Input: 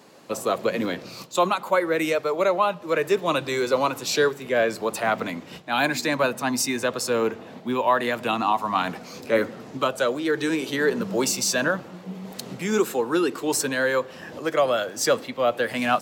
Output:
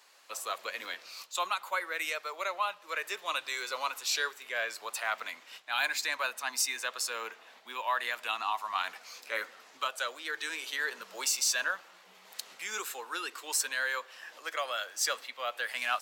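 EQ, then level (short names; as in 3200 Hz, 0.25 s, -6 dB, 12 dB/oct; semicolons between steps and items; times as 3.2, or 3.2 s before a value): HPF 1300 Hz 12 dB/oct; -4.0 dB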